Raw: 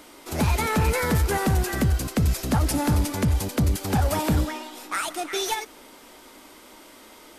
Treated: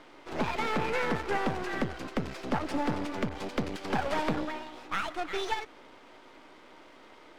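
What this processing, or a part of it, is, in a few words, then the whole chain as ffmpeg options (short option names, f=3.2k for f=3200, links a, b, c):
crystal radio: -filter_complex "[0:a]highpass=250,lowpass=2.8k,aeval=exprs='if(lt(val(0),0),0.251*val(0),val(0))':c=same,asettb=1/sr,asplit=3[a][b][c];[a]atrim=end=3.294[d];[b]atrim=start=3.29:end=4.31,asetpts=PTS-STARTPTS,afade=t=in:d=0.004:c=qsin,afade=t=out:st=1.016:d=0.004:c=qsin,adynamicequalizer=threshold=0.00631:dfrequency=1700:dqfactor=0.7:tfrequency=1700:tqfactor=0.7:attack=5:release=100:ratio=0.375:range=1.5:mode=boostabove:tftype=highshelf[e];[c]atrim=start=4.306[f];[d][e]acrossfade=d=0.004:c1=hsin:c2=qsin[g];[g][f]acrossfade=d=0.004:c1=qsin:c2=hsin"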